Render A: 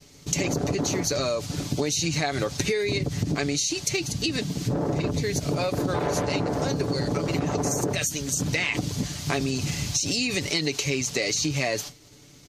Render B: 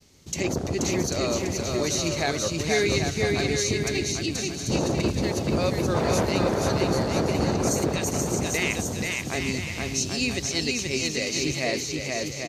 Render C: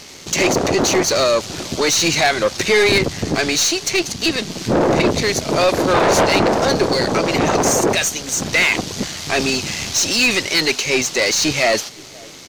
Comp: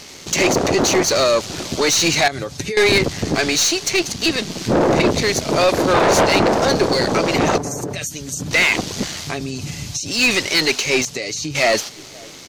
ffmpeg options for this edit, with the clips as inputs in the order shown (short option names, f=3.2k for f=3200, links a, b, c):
-filter_complex "[0:a]asplit=4[a][b][c][d];[2:a]asplit=5[e][f][g][h][i];[e]atrim=end=2.282[j];[a]atrim=start=2.278:end=2.772[k];[f]atrim=start=2.768:end=7.582[l];[b]atrim=start=7.578:end=8.512[m];[g]atrim=start=8.508:end=9.35[n];[c]atrim=start=9.19:end=10.24[o];[h]atrim=start=10.08:end=11.052[p];[d]atrim=start=11.048:end=11.552[q];[i]atrim=start=11.548[r];[j][k]acrossfade=d=0.004:c1=hsin:c2=hsin[s];[s][l]acrossfade=d=0.004:c1=hsin:c2=hsin[t];[t][m]acrossfade=d=0.004:c1=hsin:c2=hsin[u];[u][n]acrossfade=d=0.004:c1=hsin:c2=hsin[v];[v][o]acrossfade=d=0.16:c1=tri:c2=tri[w];[w][p]acrossfade=d=0.16:c1=tri:c2=tri[x];[x][q]acrossfade=d=0.004:c1=hsin:c2=hsin[y];[y][r]acrossfade=d=0.004:c1=hsin:c2=hsin"